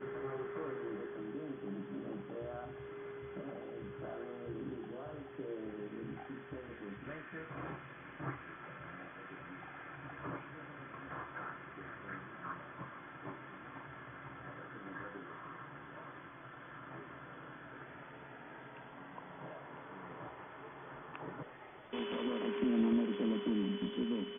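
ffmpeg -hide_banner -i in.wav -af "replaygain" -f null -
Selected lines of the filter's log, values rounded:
track_gain = +21.8 dB
track_peak = 0.052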